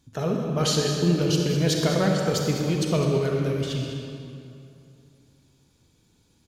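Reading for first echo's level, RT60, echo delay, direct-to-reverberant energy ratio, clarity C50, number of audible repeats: -12.0 dB, 2.7 s, 205 ms, 0.0 dB, 0.5 dB, 1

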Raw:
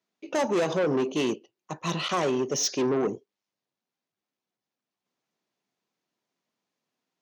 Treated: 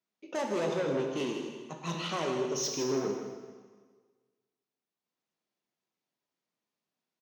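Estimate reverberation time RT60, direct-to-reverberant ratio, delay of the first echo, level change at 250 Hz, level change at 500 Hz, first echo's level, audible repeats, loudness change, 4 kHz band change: 1.5 s, 1.5 dB, 160 ms, -6.0 dB, -5.0 dB, -9.0 dB, 1, -6.0 dB, -5.5 dB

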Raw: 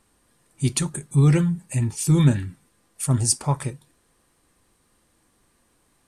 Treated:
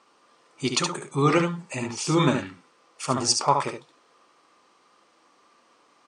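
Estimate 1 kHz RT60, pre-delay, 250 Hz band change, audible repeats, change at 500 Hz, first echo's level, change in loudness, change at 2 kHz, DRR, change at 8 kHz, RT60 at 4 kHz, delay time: no reverb, no reverb, -3.0 dB, 1, +5.0 dB, -5.5 dB, -2.5 dB, +6.0 dB, no reverb, -3.0 dB, no reverb, 71 ms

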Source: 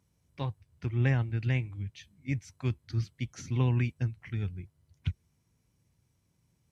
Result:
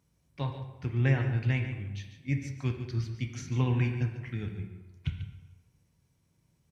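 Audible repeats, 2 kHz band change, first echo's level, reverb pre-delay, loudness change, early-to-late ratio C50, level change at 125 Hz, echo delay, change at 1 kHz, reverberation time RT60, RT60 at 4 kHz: 1, +2.0 dB, -11.5 dB, 4 ms, +0.5 dB, 6.0 dB, +0.5 dB, 143 ms, +1.5 dB, 1.1 s, 0.85 s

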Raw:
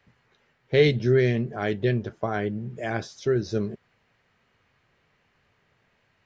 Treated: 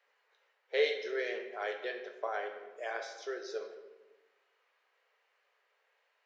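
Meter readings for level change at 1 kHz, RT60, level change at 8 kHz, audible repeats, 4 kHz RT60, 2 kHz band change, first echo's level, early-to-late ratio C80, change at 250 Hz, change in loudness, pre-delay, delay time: -6.5 dB, 1.2 s, no reading, no echo, 0.75 s, -6.5 dB, no echo, 9.5 dB, -23.5 dB, -11.5 dB, 8 ms, no echo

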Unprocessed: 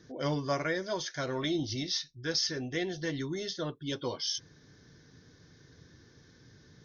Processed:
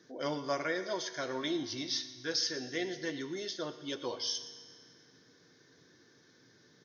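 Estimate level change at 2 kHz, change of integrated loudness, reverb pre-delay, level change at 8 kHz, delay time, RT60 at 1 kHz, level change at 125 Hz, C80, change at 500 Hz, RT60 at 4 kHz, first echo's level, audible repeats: -1.5 dB, -2.5 dB, 3 ms, no reading, 117 ms, 2.0 s, -12.0 dB, 11.5 dB, -2.0 dB, 2.0 s, -17.0 dB, 1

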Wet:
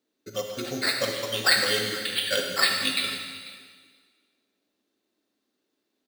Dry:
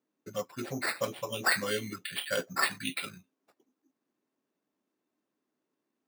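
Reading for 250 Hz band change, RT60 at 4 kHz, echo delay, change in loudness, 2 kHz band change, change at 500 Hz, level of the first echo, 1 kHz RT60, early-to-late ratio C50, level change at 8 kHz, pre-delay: +3.5 dB, 1.7 s, 494 ms, +8.0 dB, +6.0 dB, +5.0 dB, -20.0 dB, 1.7 s, 3.5 dB, +7.0 dB, 35 ms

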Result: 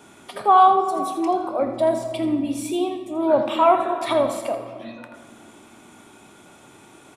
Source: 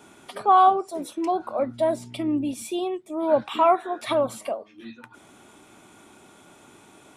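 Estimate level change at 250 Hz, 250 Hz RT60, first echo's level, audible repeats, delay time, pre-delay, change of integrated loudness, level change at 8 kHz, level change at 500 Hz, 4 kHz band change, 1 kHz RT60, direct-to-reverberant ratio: +3.5 dB, 3.7 s, -10.5 dB, 1, 82 ms, 22 ms, +3.0 dB, +2.5 dB, +3.0 dB, +3.0 dB, 2.2 s, 5.5 dB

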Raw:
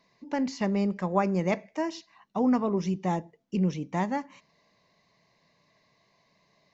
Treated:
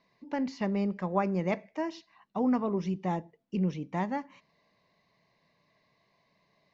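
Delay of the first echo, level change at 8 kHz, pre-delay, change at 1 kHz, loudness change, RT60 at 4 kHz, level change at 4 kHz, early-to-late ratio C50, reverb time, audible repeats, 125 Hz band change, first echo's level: no echo, no reading, no reverb, -3.0 dB, -3.0 dB, no reverb, -5.5 dB, no reverb, no reverb, no echo, -3.0 dB, no echo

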